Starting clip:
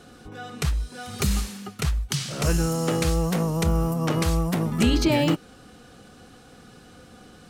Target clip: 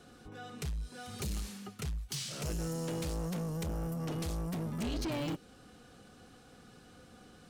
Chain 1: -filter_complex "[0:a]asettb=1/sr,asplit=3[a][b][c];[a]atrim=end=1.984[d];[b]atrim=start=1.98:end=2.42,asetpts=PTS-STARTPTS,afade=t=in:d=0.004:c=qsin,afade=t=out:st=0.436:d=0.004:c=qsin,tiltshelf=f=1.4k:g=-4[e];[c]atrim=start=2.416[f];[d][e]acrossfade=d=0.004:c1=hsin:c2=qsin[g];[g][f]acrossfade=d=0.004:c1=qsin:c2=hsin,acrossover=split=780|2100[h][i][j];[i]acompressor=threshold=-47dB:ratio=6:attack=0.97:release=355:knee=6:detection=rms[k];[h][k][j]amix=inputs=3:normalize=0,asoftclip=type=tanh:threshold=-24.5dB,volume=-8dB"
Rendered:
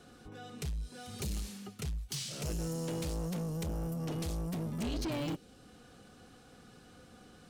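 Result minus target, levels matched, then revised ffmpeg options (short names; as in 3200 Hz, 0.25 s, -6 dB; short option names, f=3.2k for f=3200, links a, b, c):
compressor: peak gain reduction +8.5 dB
-filter_complex "[0:a]asettb=1/sr,asplit=3[a][b][c];[a]atrim=end=1.984[d];[b]atrim=start=1.98:end=2.42,asetpts=PTS-STARTPTS,afade=t=in:d=0.004:c=qsin,afade=t=out:st=0.436:d=0.004:c=qsin,tiltshelf=f=1.4k:g=-4[e];[c]atrim=start=2.416[f];[d][e]acrossfade=d=0.004:c1=hsin:c2=qsin[g];[g][f]acrossfade=d=0.004:c1=qsin:c2=hsin,acrossover=split=780|2100[h][i][j];[i]acompressor=threshold=-37dB:ratio=6:attack=0.97:release=355:knee=6:detection=rms[k];[h][k][j]amix=inputs=3:normalize=0,asoftclip=type=tanh:threshold=-24.5dB,volume=-8dB"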